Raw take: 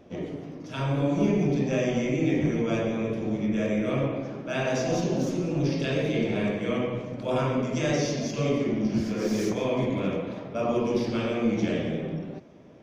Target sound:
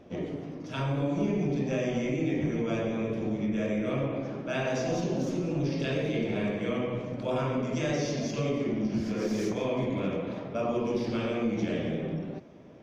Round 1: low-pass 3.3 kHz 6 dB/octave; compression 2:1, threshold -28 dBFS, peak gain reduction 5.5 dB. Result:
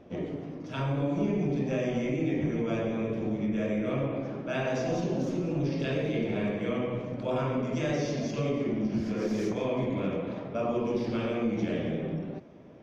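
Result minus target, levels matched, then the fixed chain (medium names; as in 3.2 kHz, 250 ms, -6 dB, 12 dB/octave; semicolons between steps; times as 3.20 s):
8 kHz band -4.0 dB
low-pass 7.6 kHz 6 dB/octave; compression 2:1, threshold -28 dBFS, peak gain reduction 5.5 dB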